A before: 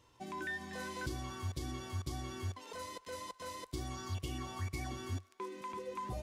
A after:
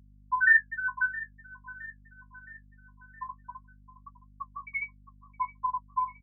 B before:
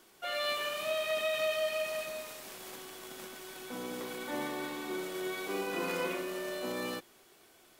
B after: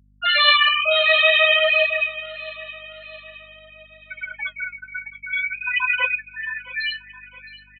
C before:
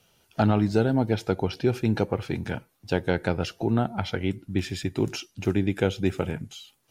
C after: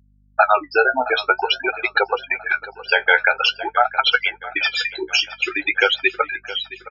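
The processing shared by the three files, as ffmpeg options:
ffmpeg -i in.wav -filter_complex "[0:a]highpass=1300,afftfilt=real='re*gte(hypot(re,im),0.0355)':imag='im*gte(hypot(re,im),0.0355)':win_size=1024:overlap=0.75,aresample=22050,aresample=44100,acontrast=23,flanger=delay=7.5:depth=8.6:regen=38:speed=0.5:shape=sinusoidal,acrossover=split=4700[link_01][link_02];[link_02]acompressor=threshold=-58dB:ratio=4:attack=1:release=60[link_03];[link_01][link_03]amix=inputs=2:normalize=0,asplit=2[link_04][link_05];[link_05]aecho=0:1:667|1334|2001|2668:0.133|0.068|0.0347|0.0177[link_06];[link_04][link_06]amix=inputs=2:normalize=0,aeval=exprs='val(0)+0.000141*(sin(2*PI*50*n/s)+sin(2*PI*2*50*n/s)/2+sin(2*PI*3*50*n/s)/3+sin(2*PI*4*50*n/s)/4+sin(2*PI*5*50*n/s)/5)':channel_layout=same,alimiter=level_in=23dB:limit=-1dB:release=50:level=0:latency=1,volume=-1dB" out.wav

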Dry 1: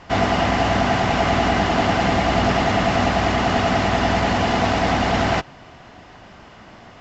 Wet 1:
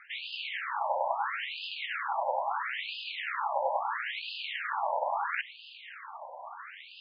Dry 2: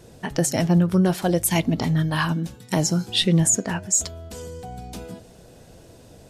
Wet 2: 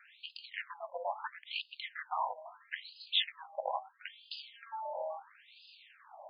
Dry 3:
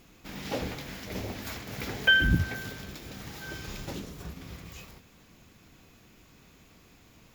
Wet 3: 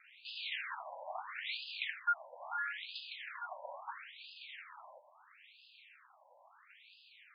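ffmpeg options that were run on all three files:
ffmpeg -i in.wav -af "bandreject=frequency=362.4:width_type=h:width=4,bandreject=frequency=724.8:width_type=h:width=4,areverse,acompressor=threshold=-29dB:ratio=6,areverse,aeval=exprs='val(0)*sin(2*PI*140*n/s)':channel_layout=same,afftfilt=real='re*between(b*sr/1024,720*pow(3600/720,0.5+0.5*sin(2*PI*0.75*pts/sr))/1.41,720*pow(3600/720,0.5+0.5*sin(2*PI*0.75*pts/sr))*1.41)':imag='im*between(b*sr/1024,720*pow(3600/720,0.5+0.5*sin(2*PI*0.75*pts/sr))/1.41,720*pow(3600/720,0.5+0.5*sin(2*PI*0.75*pts/sr))*1.41)':win_size=1024:overlap=0.75,volume=8.5dB" out.wav

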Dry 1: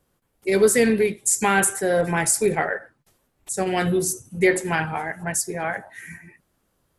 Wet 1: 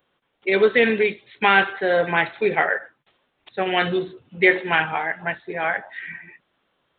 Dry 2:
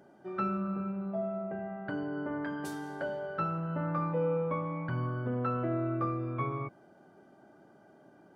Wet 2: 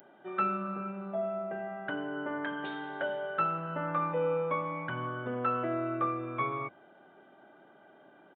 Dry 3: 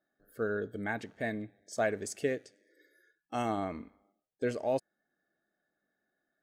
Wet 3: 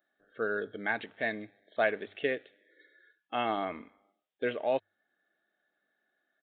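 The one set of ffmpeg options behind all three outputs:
ffmpeg -i in.wav -af "aresample=8000,aresample=44100,aemphasis=mode=production:type=riaa,bandreject=frequency=50:width_type=h:width=6,bandreject=frequency=100:width_type=h:width=6,volume=3.5dB" out.wav

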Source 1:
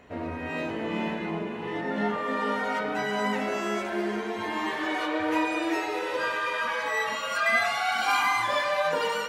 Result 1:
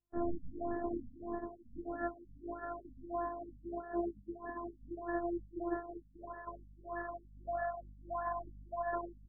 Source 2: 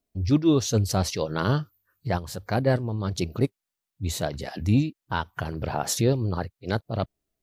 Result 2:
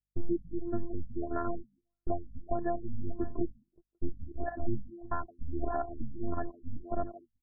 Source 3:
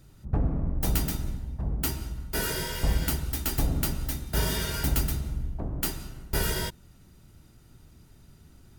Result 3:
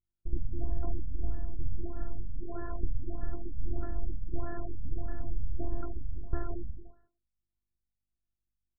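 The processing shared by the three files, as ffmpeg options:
ffmpeg -i in.wav -filter_complex "[0:a]afftfilt=real='hypot(re,im)*cos(PI*b)':imag='0':win_size=512:overlap=0.75,acompressor=threshold=-32dB:ratio=6,aeval=exprs='val(0)+0.000891*(sin(2*PI*50*n/s)+sin(2*PI*2*50*n/s)/2+sin(2*PI*3*50*n/s)/3+sin(2*PI*4*50*n/s)/4+sin(2*PI*5*50*n/s)/5)':channel_layout=same,bass=frequency=250:gain=10,treble=frequency=4000:gain=13,asplit=2[link_01][link_02];[link_02]aecho=0:1:364|728|1092:0.266|0.0559|0.0117[link_03];[link_01][link_03]amix=inputs=2:normalize=0,agate=range=-42dB:threshold=-34dB:ratio=16:detection=peak,asplit=2[link_04][link_05];[link_05]adelay=170,highpass=300,lowpass=3400,asoftclip=type=hard:threshold=-10.5dB,volume=-12dB[link_06];[link_04][link_06]amix=inputs=2:normalize=0,adynamicequalizer=threshold=0.00126:dfrequency=720:dqfactor=3.4:tfrequency=720:tqfactor=3.4:attack=5:release=100:ratio=0.375:range=1.5:mode=boostabove:tftype=bell,afftfilt=real='re*lt(b*sr/1024,250*pow(2000/250,0.5+0.5*sin(2*PI*1.6*pts/sr)))':imag='im*lt(b*sr/1024,250*pow(2000/250,0.5+0.5*sin(2*PI*1.6*pts/sr)))':win_size=1024:overlap=0.75,volume=1dB" out.wav

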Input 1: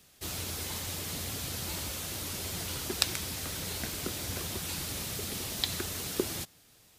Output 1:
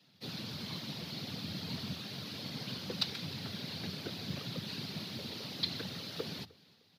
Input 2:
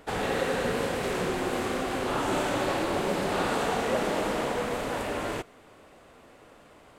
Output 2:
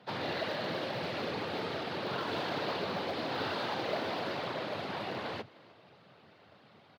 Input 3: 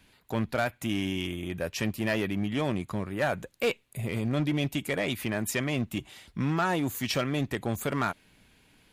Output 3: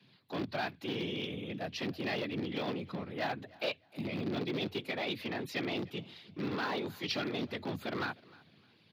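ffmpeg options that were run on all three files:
ffmpeg -i in.wav -filter_complex "[0:a]equalizer=frequency=69:width_type=o:width=0.47:gain=15,afftfilt=real='hypot(re,im)*cos(2*PI*random(0))':imag='hypot(re,im)*sin(2*PI*random(1))':win_size=512:overlap=0.75,asplit=2[link_01][link_02];[link_02]aeval=exprs='(mod(23.7*val(0)+1,2)-1)/23.7':channel_layout=same,volume=-11dB[link_03];[link_01][link_03]amix=inputs=2:normalize=0,highshelf=frequency=5800:width_type=q:width=3:gain=-11.5,afreqshift=85,asplit=2[link_04][link_05];[link_05]aecho=0:1:305|610:0.0708|0.0184[link_06];[link_04][link_06]amix=inputs=2:normalize=0,volume=-3.5dB" out.wav

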